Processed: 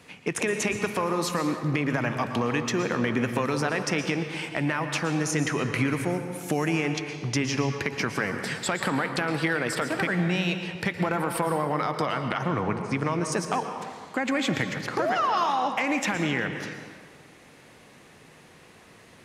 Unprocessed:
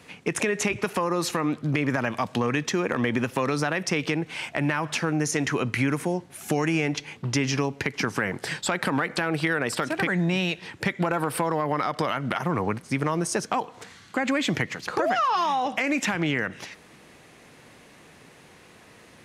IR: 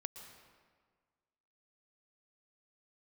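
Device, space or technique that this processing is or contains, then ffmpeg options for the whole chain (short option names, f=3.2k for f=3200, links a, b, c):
stairwell: -filter_complex "[0:a]asettb=1/sr,asplit=3[a][b][c];[a]atrim=end=12.054[d];[b]atrim=start=12.05:end=13.32,asetpts=PTS-STARTPTS,afade=t=in:d=0.004:c=qsin,afade=t=out:st=1.266:d=0.004:c=qsin,lowpass=7.4k[e];[c]atrim=start=13.316[f];[d][e]acrossfade=d=0.004:c1=hsin:c2=qsin[g];[g][f]acrossfade=d=0.004:c1=qsin:c2=hsin[h];[1:a]atrim=start_sample=2205[i];[h][i]afir=irnorm=-1:irlink=0,volume=2dB"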